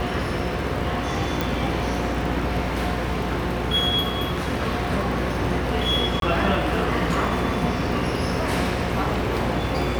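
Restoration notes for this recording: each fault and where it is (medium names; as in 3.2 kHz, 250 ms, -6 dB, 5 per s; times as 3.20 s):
buzz 60 Hz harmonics 29 -29 dBFS
crackle 78 per s -31 dBFS
1.41 s: pop
6.20–6.22 s: dropout 22 ms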